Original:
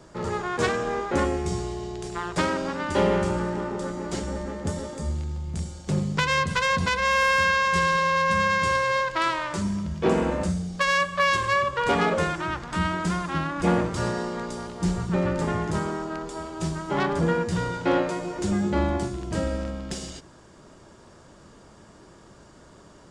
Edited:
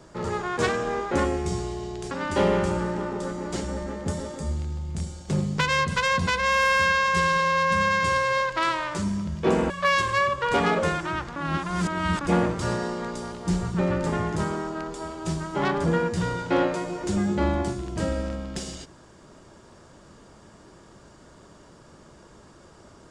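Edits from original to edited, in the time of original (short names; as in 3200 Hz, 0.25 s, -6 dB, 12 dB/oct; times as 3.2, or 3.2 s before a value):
2.11–2.7 cut
10.29–11.05 cut
12.71–13.56 reverse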